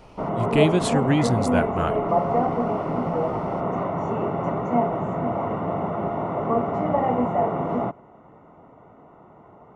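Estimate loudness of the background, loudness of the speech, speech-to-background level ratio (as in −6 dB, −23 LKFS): −24.5 LKFS, −24.0 LKFS, 0.5 dB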